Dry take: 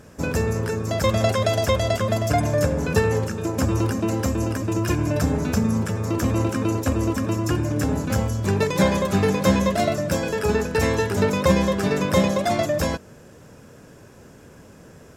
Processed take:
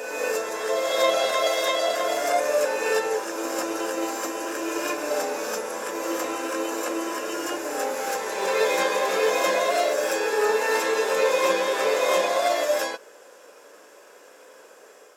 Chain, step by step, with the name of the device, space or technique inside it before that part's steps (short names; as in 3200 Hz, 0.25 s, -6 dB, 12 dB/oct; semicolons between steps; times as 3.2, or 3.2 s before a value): ghost voice (reverse; reverb RT60 2.1 s, pre-delay 3 ms, DRR -4 dB; reverse; HPF 440 Hz 24 dB/oct); gain -3 dB